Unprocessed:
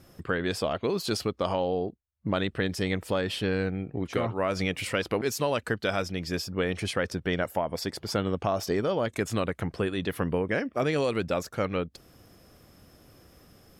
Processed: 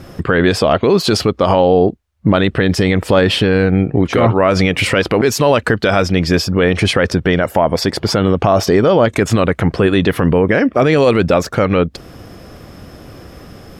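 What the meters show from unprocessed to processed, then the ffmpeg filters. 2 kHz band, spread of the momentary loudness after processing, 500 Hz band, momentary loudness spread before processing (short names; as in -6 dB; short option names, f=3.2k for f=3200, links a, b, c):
+14.5 dB, 3 LU, +15.5 dB, 4 LU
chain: -af "lowpass=f=3.3k:p=1,alimiter=level_in=21dB:limit=-1dB:release=50:level=0:latency=1,volume=-1dB"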